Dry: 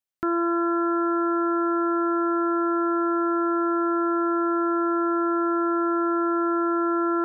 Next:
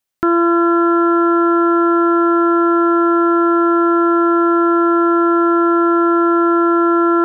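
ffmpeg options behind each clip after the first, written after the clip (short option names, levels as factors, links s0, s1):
-af "acontrast=66,volume=1.58"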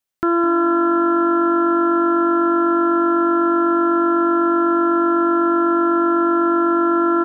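-filter_complex "[0:a]asplit=4[s0][s1][s2][s3];[s1]adelay=206,afreqshift=-48,volume=0.2[s4];[s2]adelay=412,afreqshift=-96,volume=0.0676[s5];[s3]adelay=618,afreqshift=-144,volume=0.0232[s6];[s0][s4][s5][s6]amix=inputs=4:normalize=0,volume=0.668"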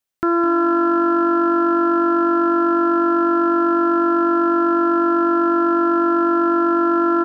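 -af "aeval=exprs='0.335*(cos(1*acos(clip(val(0)/0.335,-1,1)))-cos(1*PI/2))+0.0075*(cos(2*acos(clip(val(0)/0.335,-1,1)))-cos(2*PI/2))+0.00944*(cos(3*acos(clip(val(0)/0.335,-1,1)))-cos(3*PI/2))+0.00376*(cos(4*acos(clip(val(0)/0.335,-1,1)))-cos(4*PI/2))+0.00376*(cos(5*acos(clip(val(0)/0.335,-1,1)))-cos(5*PI/2))':c=same"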